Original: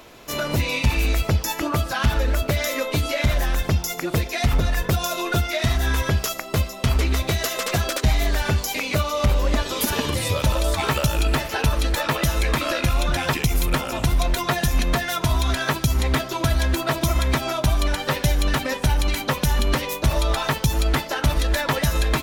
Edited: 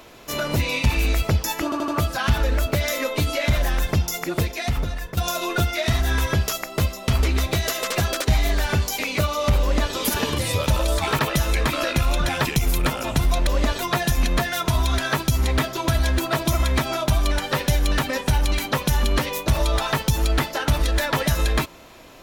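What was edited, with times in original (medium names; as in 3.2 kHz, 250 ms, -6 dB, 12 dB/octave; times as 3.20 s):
1.64 s: stutter 0.08 s, 4 plays
4.08–4.93 s: fade out, to -12.5 dB
9.37–9.69 s: copy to 14.35 s
10.95–12.07 s: delete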